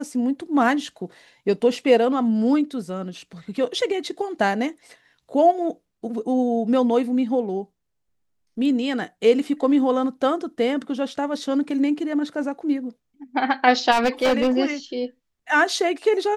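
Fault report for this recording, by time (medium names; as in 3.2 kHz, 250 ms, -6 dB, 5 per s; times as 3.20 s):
13.91–14.58 s: clipped -15 dBFS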